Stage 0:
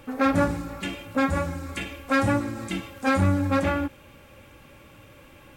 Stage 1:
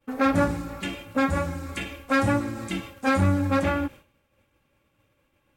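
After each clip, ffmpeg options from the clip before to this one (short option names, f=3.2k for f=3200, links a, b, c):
-af "agate=range=-33dB:threshold=-37dB:ratio=3:detection=peak"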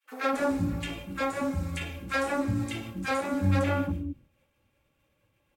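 -filter_complex "[0:a]acrossover=split=310|1300[a][b][c];[b]adelay=40[d];[a]adelay=250[e];[e][d][c]amix=inputs=3:normalize=0,volume=-2.5dB"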